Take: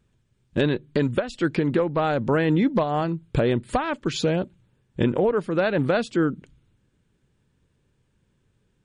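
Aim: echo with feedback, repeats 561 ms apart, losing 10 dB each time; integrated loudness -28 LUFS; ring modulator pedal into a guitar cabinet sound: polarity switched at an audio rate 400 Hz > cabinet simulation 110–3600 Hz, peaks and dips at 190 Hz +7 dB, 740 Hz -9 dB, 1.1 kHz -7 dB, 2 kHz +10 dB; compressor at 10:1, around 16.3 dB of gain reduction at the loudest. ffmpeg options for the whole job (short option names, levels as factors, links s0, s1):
-af "acompressor=threshold=0.02:ratio=10,aecho=1:1:561|1122|1683|2244:0.316|0.101|0.0324|0.0104,aeval=exprs='val(0)*sgn(sin(2*PI*400*n/s))':c=same,highpass=110,equalizer=f=190:t=q:w=4:g=7,equalizer=f=740:t=q:w=4:g=-9,equalizer=f=1100:t=q:w=4:g=-7,equalizer=f=2000:t=q:w=4:g=10,lowpass=f=3600:w=0.5412,lowpass=f=3600:w=1.3066,volume=3.35"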